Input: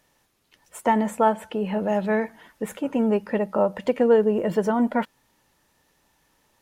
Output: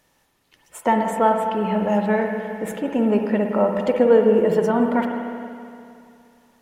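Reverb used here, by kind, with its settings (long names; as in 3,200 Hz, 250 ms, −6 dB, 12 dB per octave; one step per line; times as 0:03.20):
spring reverb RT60 2.5 s, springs 52/58 ms, chirp 70 ms, DRR 3 dB
level +1.5 dB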